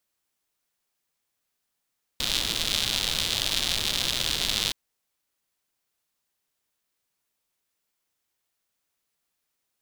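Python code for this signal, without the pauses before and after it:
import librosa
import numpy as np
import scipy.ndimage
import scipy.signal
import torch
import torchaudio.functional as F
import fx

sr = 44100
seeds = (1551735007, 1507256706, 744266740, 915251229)

y = fx.rain(sr, seeds[0], length_s=2.52, drops_per_s=160.0, hz=3600.0, bed_db=-7.5)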